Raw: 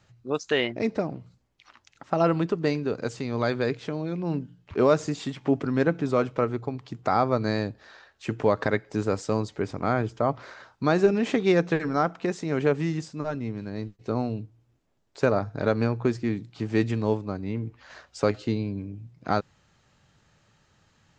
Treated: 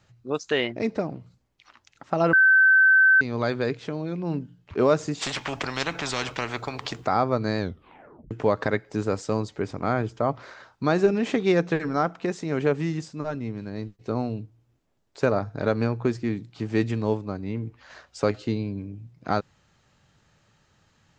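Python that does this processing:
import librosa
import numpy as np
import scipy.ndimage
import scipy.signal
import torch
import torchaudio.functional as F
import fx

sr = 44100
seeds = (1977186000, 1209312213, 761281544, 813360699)

y = fx.spectral_comp(x, sr, ratio=4.0, at=(5.21, 7.04), fade=0.02)
y = fx.edit(y, sr, fx.bleep(start_s=2.33, length_s=0.88, hz=1540.0, db=-13.0),
    fx.tape_stop(start_s=7.59, length_s=0.72), tone=tone)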